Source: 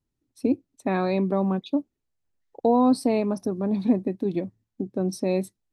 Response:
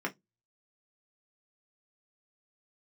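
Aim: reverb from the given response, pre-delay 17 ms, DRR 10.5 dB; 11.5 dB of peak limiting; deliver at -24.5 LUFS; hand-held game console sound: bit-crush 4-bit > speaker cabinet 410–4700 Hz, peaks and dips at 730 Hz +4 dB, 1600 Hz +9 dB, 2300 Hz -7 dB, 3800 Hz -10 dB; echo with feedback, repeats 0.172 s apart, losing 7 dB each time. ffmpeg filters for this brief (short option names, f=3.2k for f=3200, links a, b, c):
-filter_complex "[0:a]alimiter=limit=-21.5dB:level=0:latency=1,aecho=1:1:172|344|516|688|860:0.447|0.201|0.0905|0.0407|0.0183,asplit=2[a][b];[1:a]atrim=start_sample=2205,adelay=17[c];[b][c]afir=irnorm=-1:irlink=0,volume=-16dB[d];[a][d]amix=inputs=2:normalize=0,acrusher=bits=3:mix=0:aa=0.000001,highpass=410,equalizer=f=730:t=q:w=4:g=4,equalizer=f=1.6k:t=q:w=4:g=9,equalizer=f=2.3k:t=q:w=4:g=-7,equalizer=f=3.8k:t=q:w=4:g=-10,lowpass=f=4.7k:w=0.5412,lowpass=f=4.7k:w=1.3066,volume=5.5dB"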